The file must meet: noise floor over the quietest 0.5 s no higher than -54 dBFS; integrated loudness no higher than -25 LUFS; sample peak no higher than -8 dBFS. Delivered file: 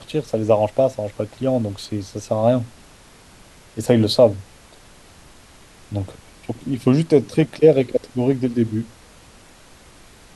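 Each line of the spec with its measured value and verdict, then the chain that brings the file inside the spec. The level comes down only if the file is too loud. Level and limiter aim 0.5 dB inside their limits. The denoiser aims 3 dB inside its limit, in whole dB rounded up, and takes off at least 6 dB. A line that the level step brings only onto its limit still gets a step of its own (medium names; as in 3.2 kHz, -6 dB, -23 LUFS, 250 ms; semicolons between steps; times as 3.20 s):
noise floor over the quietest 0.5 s -47 dBFS: fail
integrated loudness -20.0 LUFS: fail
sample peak -2.0 dBFS: fail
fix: noise reduction 6 dB, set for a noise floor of -47 dBFS; trim -5.5 dB; peak limiter -8.5 dBFS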